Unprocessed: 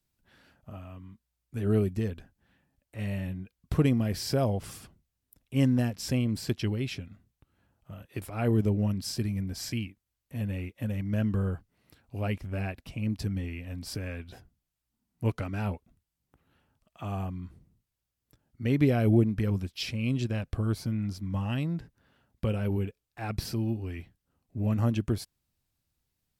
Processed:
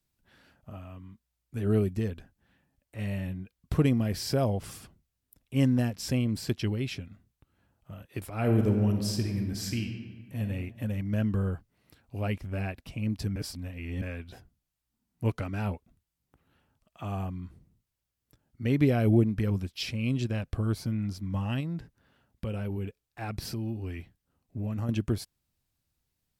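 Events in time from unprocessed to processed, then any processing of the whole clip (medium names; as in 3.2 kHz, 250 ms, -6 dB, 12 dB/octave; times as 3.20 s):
8.35–10.41 s: reverb throw, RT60 1.6 s, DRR 4 dB
13.36–14.02 s: reverse
21.60–24.89 s: compression 3:1, threshold -30 dBFS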